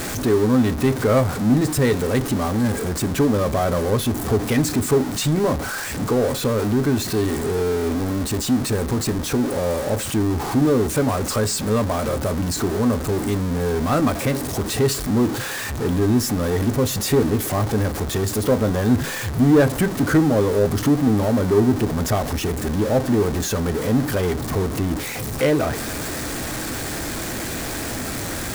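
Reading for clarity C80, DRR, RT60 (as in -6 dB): 27.0 dB, 11.0 dB, 0.50 s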